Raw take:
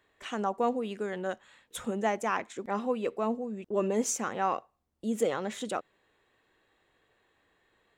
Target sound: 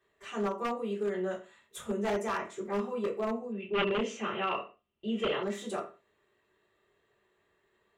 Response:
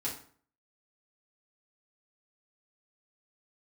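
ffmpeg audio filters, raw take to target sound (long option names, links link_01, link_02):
-filter_complex "[1:a]atrim=start_sample=2205,afade=type=out:start_time=0.37:duration=0.01,atrim=end_sample=16758,asetrate=61740,aresample=44100[link_01];[0:a][link_01]afir=irnorm=-1:irlink=0,aeval=exprs='0.0841*(abs(mod(val(0)/0.0841+3,4)-2)-1)':channel_layout=same,asettb=1/sr,asplit=3[link_02][link_03][link_04];[link_02]atrim=end=3.524[link_05];[link_03]atrim=start=3.52:end=5.43,asetpts=PTS-STARTPTS,afade=type=in:duration=0.004:curve=qsin,afade=type=out:start_time=1.906:duration=0.004:curve=qsin,lowpass=frequency=2900:width_type=q:width=6.7[link_06];[link_04]atrim=start=5.426[link_07];[link_05][link_06]acrossfade=duration=0.004:curve1=hsin:curve2=qsin[link_08];[link_08][link_07]acrossfade=duration=0.004:curve1=qsin:curve2=hsin,volume=-3dB"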